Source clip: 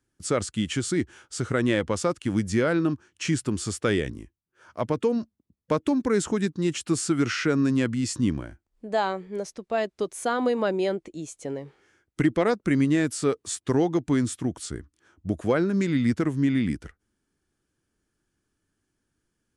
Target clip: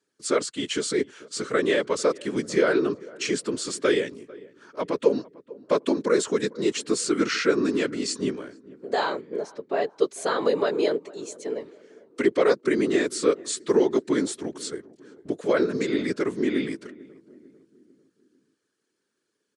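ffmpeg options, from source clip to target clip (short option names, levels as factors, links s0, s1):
-filter_complex "[0:a]asettb=1/sr,asplit=3[s0][s1][s2];[s0]atrim=end=9.214[s3];[s1]atrim=start=9.21:end=9.87,asetpts=PTS-STARTPTS,afade=t=in:d=0.004:c=qsin,afade=t=out:st=0.656:d=0.004:c=qsin,highshelf=f=2900:g=-10[s4];[s2]atrim=start=9.866[s5];[s3][s4]acrossfade=d=0.004:c1=hsin:c2=qsin[s6];[s6][s5]acrossfade=d=0.004:c1=qsin:c2=hsin,afftfilt=real='hypot(re,im)*cos(2*PI*random(0))':imag='hypot(re,im)*sin(2*PI*random(1))':win_size=512:overlap=0.75,highpass=310,equalizer=f=430:t=q:w=4:g=6,equalizer=f=770:t=q:w=4:g=-6,equalizer=f=4200:t=q:w=4:g=6,lowpass=f=9600:w=0.5412,lowpass=f=9600:w=1.3066,asplit=2[s7][s8];[s8]adelay=447,lowpass=f=1100:p=1,volume=0.0944,asplit=2[s9][s10];[s10]adelay=447,lowpass=f=1100:p=1,volume=0.5,asplit=2[s11][s12];[s12]adelay=447,lowpass=f=1100:p=1,volume=0.5,asplit=2[s13][s14];[s14]adelay=447,lowpass=f=1100:p=1,volume=0.5[s15];[s7][s9][s11][s13][s15]amix=inputs=5:normalize=0,volume=2.37"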